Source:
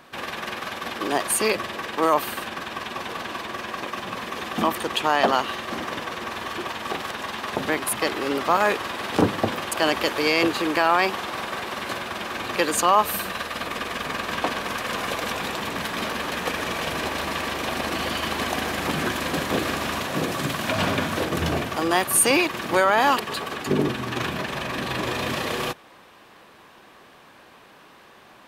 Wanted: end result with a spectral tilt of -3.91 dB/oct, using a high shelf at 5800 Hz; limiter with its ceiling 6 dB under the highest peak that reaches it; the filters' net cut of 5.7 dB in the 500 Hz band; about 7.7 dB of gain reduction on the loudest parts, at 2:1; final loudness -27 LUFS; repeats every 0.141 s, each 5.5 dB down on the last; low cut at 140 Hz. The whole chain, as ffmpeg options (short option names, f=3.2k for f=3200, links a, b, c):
-af "highpass=140,equalizer=f=500:t=o:g=-7.5,highshelf=f=5.8k:g=-5,acompressor=threshold=-29dB:ratio=2,alimiter=limit=-19dB:level=0:latency=1,aecho=1:1:141|282|423|564|705|846|987:0.531|0.281|0.149|0.079|0.0419|0.0222|0.0118,volume=2.5dB"